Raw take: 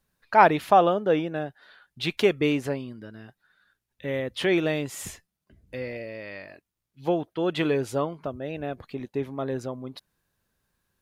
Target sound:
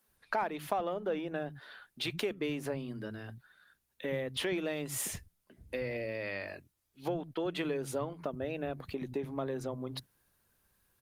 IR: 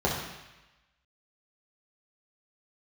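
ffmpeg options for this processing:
-filter_complex "[0:a]asplit=2[s0][s1];[s1]asoftclip=type=tanh:threshold=0.0944,volume=0.376[s2];[s0][s2]amix=inputs=2:normalize=0,acompressor=threshold=0.0251:ratio=5,acrossover=split=190[s3][s4];[s3]adelay=80[s5];[s5][s4]amix=inputs=2:normalize=0,acrossover=split=2100[s6][s7];[s7]crystalizer=i=0.5:c=0[s8];[s6][s8]amix=inputs=2:normalize=0" -ar 48000 -c:a libopus -b:a 24k

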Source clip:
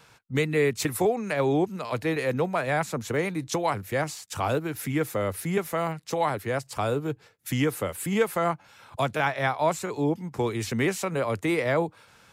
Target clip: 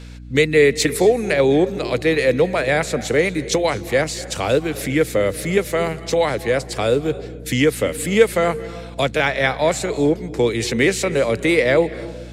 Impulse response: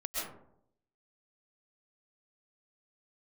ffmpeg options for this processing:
-filter_complex "[0:a]equalizer=f=125:t=o:w=1:g=3,equalizer=f=250:t=o:w=1:g=5,equalizer=f=500:t=o:w=1:g=11,equalizer=f=1000:t=o:w=1:g=-4,equalizer=f=2000:t=o:w=1:g=9,equalizer=f=4000:t=o:w=1:g=10,equalizer=f=8000:t=o:w=1:g=8,aeval=exprs='val(0)+0.0178*(sin(2*PI*60*n/s)+sin(2*PI*2*60*n/s)/2+sin(2*PI*3*60*n/s)/3+sin(2*PI*4*60*n/s)/4+sin(2*PI*5*60*n/s)/5)':c=same,asplit=2[s0][s1];[1:a]atrim=start_sample=2205,asetrate=25578,aresample=44100[s2];[s1][s2]afir=irnorm=-1:irlink=0,volume=0.0841[s3];[s0][s3]amix=inputs=2:normalize=0,volume=0.891"

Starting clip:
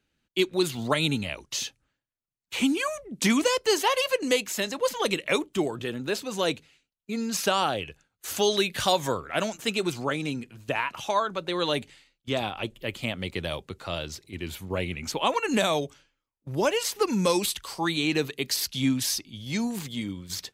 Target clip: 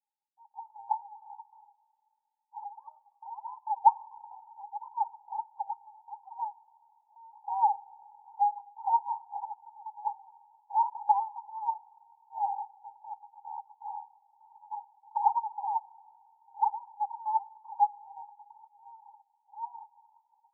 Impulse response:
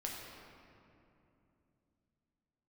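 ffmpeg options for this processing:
-filter_complex "[0:a]dynaudnorm=f=150:g=9:m=3.76,asuperpass=centerf=860:order=8:qfactor=6.3,asplit=2[s0][s1];[1:a]atrim=start_sample=2205[s2];[s1][s2]afir=irnorm=-1:irlink=0,volume=0.119[s3];[s0][s3]amix=inputs=2:normalize=0"

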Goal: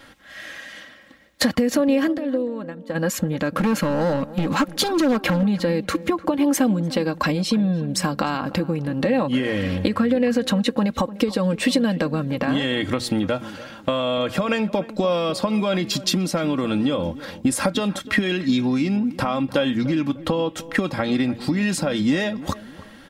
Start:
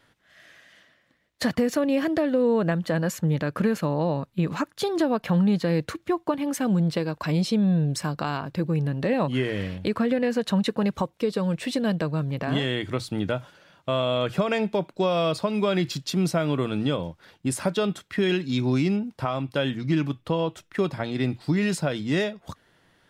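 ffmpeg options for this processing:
-filter_complex "[0:a]asplit=2[s0][s1];[s1]alimiter=limit=0.0944:level=0:latency=1:release=124,volume=1[s2];[s0][s2]amix=inputs=2:normalize=0,asettb=1/sr,asplit=3[s3][s4][s5];[s3]atrim=end=3.524[s6];[s4]atrim=start=3.52:end=5.43,asetpts=PTS-STARTPTS,afade=t=in:d=0.004:c=qsin,afade=t=out:st=1.906:d=0.004:c=qsin,volume=8.41,asoftclip=hard,volume=0.119[s7];[s5]atrim=start=5.426[s8];[s6][s7]acrossfade=d=0.004:c1=hsin:c2=qsin[s9];[s9][s8]acrossfade=d=0.004:c1=qsin:c2=hsin,acompressor=threshold=0.0501:ratio=16,aecho=1:1:3.7:0.54,asplit=3[s10][s11][s12];[s10]afade=t=out:st=2.11:d=0.02[s13];[s11]agate=range=0.0224:threshold=0.1:ratio=3:detection=peak,afade=t=in:st=2.11:d=0.02,afade=t=out:st=2.94:d=0.02[s14];[s12]afade=t=in:st=2.94:d=0.02[s15];[s13][s14][s15]amix=inputs=3:normalize=0,asplit=2[s16][s17];[s17]adelay=299,lowpass=f=1200:p=1,volume=0.168,asplit=2[s18][s19];[s19]adelay=299,lowpass=f=1200:p=1,volume=0.38,asplit=2[s20][s21];[s21]adelay=299,lowpass=f=1200:p=1,volume=0.38[s22];[s18][s20][s22]amix=inputs=3:normalize=0[s23];[s16][s23]amix=inputs=2:normalize=0,volume=2.51"

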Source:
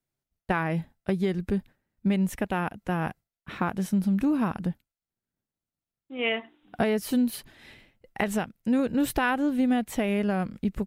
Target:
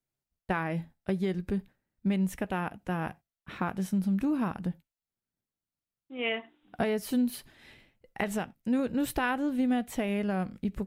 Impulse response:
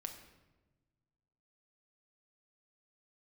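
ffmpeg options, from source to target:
-filter_complex "[0:a]asplit=2[s0][s1];[1:a]atrim=start_sample=2205,afade=t=out:st=0.13:d=0.01,atrim=end_sample=6174,adelay=16[s2];[s1][s2]afir=irnorm=-1:irlink=0,volume=0.211[s3];[s0][s3]amix=inputs=2:normalize=0,volume=0.631"

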